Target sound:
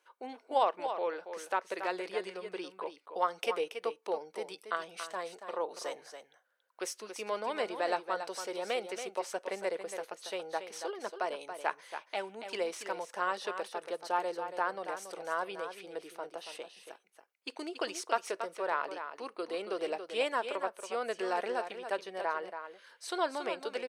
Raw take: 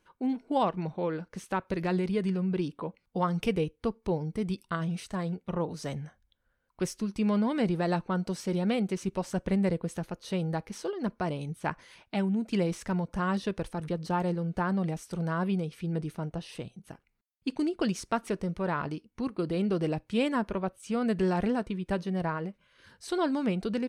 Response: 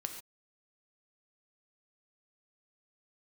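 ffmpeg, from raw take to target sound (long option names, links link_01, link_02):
-filter_complex "[0:a]highpass=frequency=460:width=0.5412,highpass=frequency=460:width=1.3066,asplit=2[link_01][link_02];[link_02]aecho=0:1:280:0.355[link_03];[link_01][link_03]amix=inputs=2:normalize=0"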